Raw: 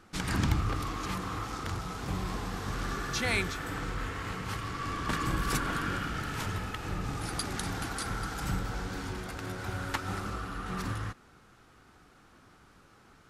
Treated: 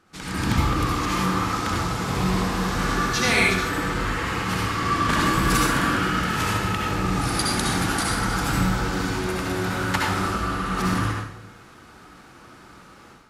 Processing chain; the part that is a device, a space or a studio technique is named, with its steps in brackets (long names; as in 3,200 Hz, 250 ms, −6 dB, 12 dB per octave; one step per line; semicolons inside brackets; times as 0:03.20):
far laptop microphone (convolution reverb RT60 0.70 s, pre-delay 60 ms, DRR −2.5 dB; high-pass filter 110 Hz 6 dB per octave; automatic gain control gain up to 11 dB)
level −3 dB